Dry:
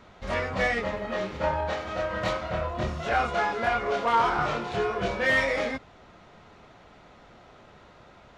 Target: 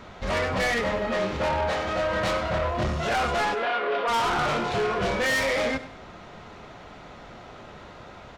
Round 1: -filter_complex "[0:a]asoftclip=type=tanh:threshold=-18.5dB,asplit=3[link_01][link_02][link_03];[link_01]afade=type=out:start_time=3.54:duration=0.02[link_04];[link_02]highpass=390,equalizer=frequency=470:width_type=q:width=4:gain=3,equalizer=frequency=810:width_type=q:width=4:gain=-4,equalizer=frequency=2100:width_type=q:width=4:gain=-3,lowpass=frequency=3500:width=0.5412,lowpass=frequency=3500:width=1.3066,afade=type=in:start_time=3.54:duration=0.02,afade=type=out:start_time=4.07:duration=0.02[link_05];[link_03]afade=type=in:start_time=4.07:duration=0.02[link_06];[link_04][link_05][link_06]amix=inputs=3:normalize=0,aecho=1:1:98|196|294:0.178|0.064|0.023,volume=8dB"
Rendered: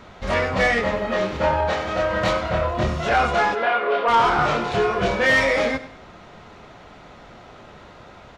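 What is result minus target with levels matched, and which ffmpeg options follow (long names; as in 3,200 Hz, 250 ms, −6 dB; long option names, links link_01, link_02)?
soft clipping: distortion −11 dB
-filter_complex "[0:a]asoftclip=type=tanh:threshold=-30dB,asplit=3[link_01][link_02][link_03];[link_01]afade=type=out:start_time=3.54:duration=0.02[link_04];[link_02]highpass=390,equalizer=frequency=470:width_type=q:width=4:gain=3,equalizer=frequency=810:width_type=q:width=4:gain=-4,equalizer=frequency=2100:width_type=q:width=4:gain=-3,lowpass=frequency=3500:width=0.5412,lowpass=frequency=3500:width=1.3066,afade=type=in:start_time=3.54:duration=0.02,afade=type=out:start_time=4.07:duration=0.02[link_05];[link_03]afade=type=in:start_time=4.07:duration=0.02[link_06];[link_04][link_05][link_06]amix=inputs=3:normalize=0,aecho=1:1:98|196|294:0.178|0.064|0.023,volume=8dB"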